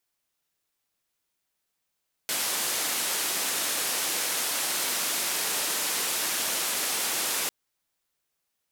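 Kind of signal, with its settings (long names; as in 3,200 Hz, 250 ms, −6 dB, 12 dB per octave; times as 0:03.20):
band-limited noise 250–13,000 Hz, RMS −28.5 dBFS 5.20 s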